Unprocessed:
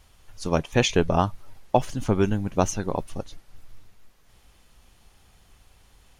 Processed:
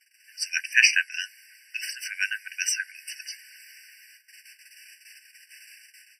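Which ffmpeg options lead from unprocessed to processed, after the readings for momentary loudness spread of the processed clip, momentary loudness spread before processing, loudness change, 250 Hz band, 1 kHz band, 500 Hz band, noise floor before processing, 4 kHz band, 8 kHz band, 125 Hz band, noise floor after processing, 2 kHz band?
19 LU, 14 LU, −0.5 dB, below −40 dB, below −30 dB, below −40 dB, −58 dBFS, +4.0 dB, +5.5 dB, below −40 dB, −61 dBFS, +12.0 dB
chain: -af "agate=range=-16dB:threshold=-54dB:ratio=16:detection=peak,dynaudnorm=framelen=130:gausssize=5:maxgain=10dB,afftfilt=real='re*eq(mod(floor(b*sr/1024/1500),2),1)':imag='im*eq(mod(floor(b*sr/1024/1500),2),1)':win_size=1024:overlap=0.75,volume=8.5dB"

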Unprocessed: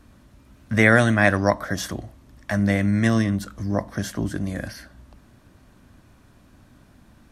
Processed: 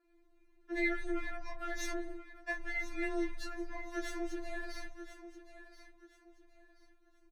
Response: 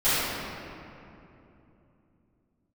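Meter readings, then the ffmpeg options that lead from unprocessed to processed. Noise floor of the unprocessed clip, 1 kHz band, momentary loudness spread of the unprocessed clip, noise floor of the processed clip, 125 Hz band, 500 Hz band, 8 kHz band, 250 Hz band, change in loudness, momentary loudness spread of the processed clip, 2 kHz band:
−54 dBFS, −17.5 dB, 15 LU, −67 dBFS, below −35 dB, −16.5 dB, −14.0 dB, −18.0 dB, −18.0 dB, 19 LU, −16.0 dB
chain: -filter_complex "[0:a]aeval=exprs='if(lt(val(0),0),0.251*val(0),val(0))':channel_layout=same,agate=range=-17dB:threshold=-47dB:ratio=16:detection=peak,lowpass=frequency=1900:poles=1,acrossover=split=92|490[link_01][link_02][link_03];[link_01]acompressor=threshold=-40dB:ratio=4[link_04];[link_02]acompressor=threshold=-34dB:ratio=4[link_05];[link_03]acompressor=threshold=-36dB:ratio=4[link_06];[link_04][link_05][link_06]amix=inputs=3:normalize=0,acrossover=split=1400[link_07][link_08];[link_07]alimiter=level_in=5dB:limit=-24dB:level=0:latency=1,volume=-5dB[link_09];[link_09][link_08]amix=inputs=2:normalize=0,acompressor=threshold=-39dB:ratio=6,afreqshift=13,asplit=2[link_10][link_11];[link_11]adelay=15,volume=-3dB[link_12];[link_10][link_12]amix=inputs=2:normalize=0,aecho=1:1:1030|2060|3090:0.224|0.0694|0.0215,afftfilt=real='re*4*eq(mod(b,16),0)':imag='im*4*eq(mod(b,16),0)':win_size=2048:overlap=0.75,volume=6dB"

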